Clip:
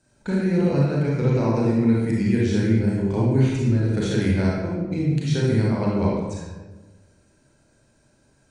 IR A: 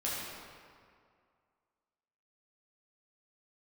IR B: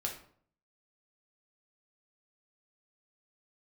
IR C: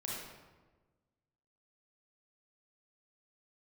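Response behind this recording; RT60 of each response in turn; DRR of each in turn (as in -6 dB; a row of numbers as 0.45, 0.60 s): C; 2.2, 0.55, 1.3 s; -7.5, -1.0, -5.0 dB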